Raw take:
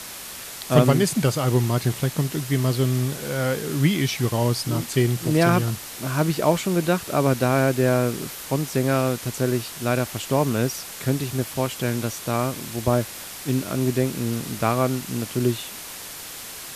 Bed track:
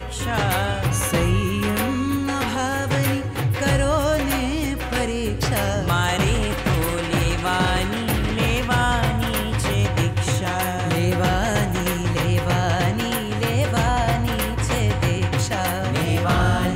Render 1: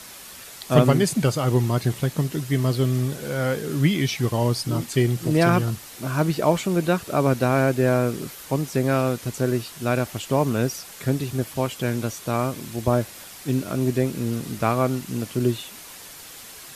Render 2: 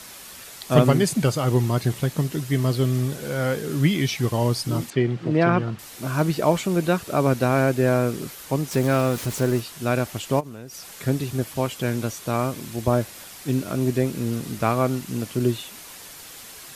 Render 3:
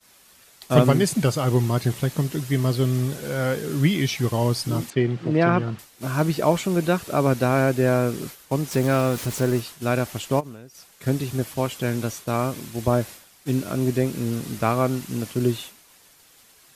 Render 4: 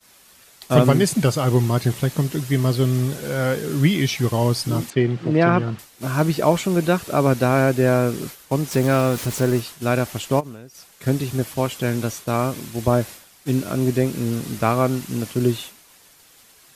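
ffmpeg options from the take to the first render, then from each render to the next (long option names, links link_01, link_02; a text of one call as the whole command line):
ffmpeg -i in.wav -af "afftdn=noise_reduction=6:noise_floor=-37" out.wav
ffmpeg -i in.wav -filter_complex "[0:a]asettb=1/sr,asplit=3[link_01][link_02][link_03];[link_01]atrim=end=4.904[link_04];[link_02]atrim=start=4.9:end=5.79,asetpts=PTS-STARTPTS,afade=type=in:duration=0.004:curve=qsin,afade=type=out:start_time=0.886:duration=0.004:curve=qsin,highpass=130,lowpass=2700[link_05];[link_03]atrim=start=5.786[link_06];[link_04][link_05]acrossfade=duration=0.004:curve1=hsin:curve2=qsin[link_07];[link_07][link_06]acrossfade=duration=0.004:curve1=qsin:curve2=hsin,asettb=1/sr,asplit=3[link_08][link_09][link_10];[link_08]atrim=end=8.714[link_11];[link_09]atrim=start=8.71:end=9.6,asetpts=PTS-STARTPTS,afade=type=in:duration=0.004:curve=qsin,afade=type=out:start_time=0.886:duration=0.004:curve=qsin,aeval=exprs='val(0)+0.5*0.0266*sgn(val(0))':channel_layout=same[link_12];[link_10]atrim=start=9.596[link_13];[link_11][link_12]acrossfade=duration=0.004:curve1=hsin:curve2=qsin[link_14];[link_14][link_13]acrossfade=duration=0.004:curve1=qsin:curve2=hsin,asplit=3[link_15][link_16][link_17];[link_15]afade=type=out:start_time=10.39:duration=0.02[link_18];[link_16]acompressor=threshold=-33dB:ratio=16:attack=3.2:release=140:knee=1:detection=peak,afade=type=in:start_time=10.39:duration=0.02,afade=type=out:start_time=10.95:duration=0.02[link_19];[link_17]afade=type=in:start_time=10.95:duration=0.02[link_20];[link_18][link_19][link_20]amix=inputs=3:normalize=0" out.wav
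ffmpeg -i in.wav -af "agate=range=-33dB:threshold=-32dB:ratio=3:detection=peak" out.wav
ffmpeg -i in.wav -af "volume=2.5dB,alimiter=limit=-3dB:level=0:latency=1" out.wav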